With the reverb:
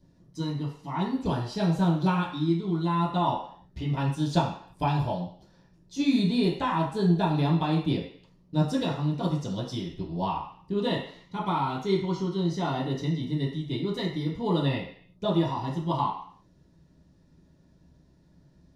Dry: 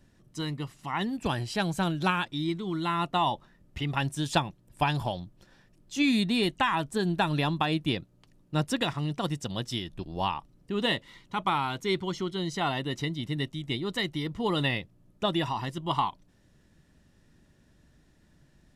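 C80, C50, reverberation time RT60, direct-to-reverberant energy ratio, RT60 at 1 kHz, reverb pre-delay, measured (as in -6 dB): 8.5 dB, 5.0 dB, 0.55 s, -7.0 dB, 0.55 s, 9 ms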